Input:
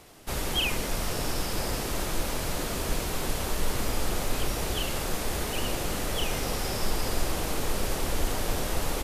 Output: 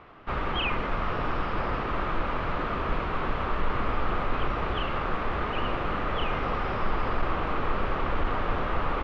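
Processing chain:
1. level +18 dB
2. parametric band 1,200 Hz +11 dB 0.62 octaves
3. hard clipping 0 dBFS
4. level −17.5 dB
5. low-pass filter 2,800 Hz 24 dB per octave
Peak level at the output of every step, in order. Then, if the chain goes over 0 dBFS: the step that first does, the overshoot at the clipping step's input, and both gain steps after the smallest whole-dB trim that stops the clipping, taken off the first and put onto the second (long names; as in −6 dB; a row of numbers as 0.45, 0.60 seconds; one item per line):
+4.5, +5.0, 0.0, −17.5, −17.0 dBFS
step 1, 5.0 dB
step 1 +13 dB, step 4 −12.5 dB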